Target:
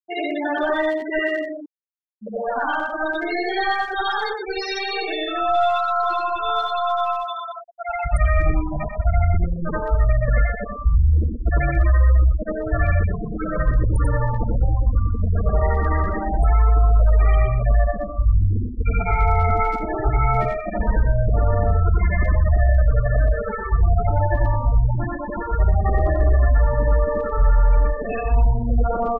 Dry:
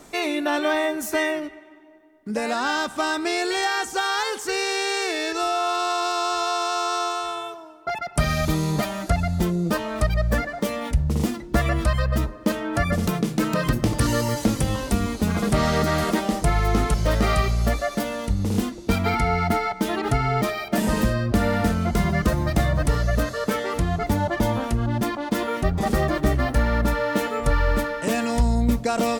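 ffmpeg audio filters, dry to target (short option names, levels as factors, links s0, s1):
-filter_complex "[0:a]afftfilt=real='re':imag='-im':win_size=8192:overlap=0.75,acrossover=split=390[s0][s1];[s0]asoftclip=type=tanh:threshold=0.0355[s2];[s2][s1]amix=inputs=2:normalize=0,acontrast=62,highshelf=f=5200:g=3,aeval=exprs='0.422*(cos(1*acos(clip(val(0)/0.422,-1,1)))-cos(1*PI/2))+0.0596*(cos(2*acos(clip(val(0)/0.422,-1,1)))-cos(2*PI/2))+0.00841*(cos(4*acos(clip(val(0)/0.422,-1,1)))-cos(4*PI/2))+0.00841*(cos(5*acos(clip(val(0)/0.422,-1,1)))-cos(5*PI/2))':c=same,asubboost=boost=9.5:cutoff=61,afftfilt=real='re*gte(hypot(re,im),0.2)':imag='im*gte(hypot(re,im),0.2)':win_size=1024:overlap=0.75,alimiter=limit=0.355:level=0:latency=1:release=42,asplit=2[s3][s4];[s4]adelay=120,highpass=300,lowpass=3400,asoftclip=type=hard:threshold=0.141,volume=0.447[s5];[s3][s5]amix=inputs=2:normalize=0,areverse,acompressor=mode=upward:threshold=0.0501:ratio=2.5,areverse"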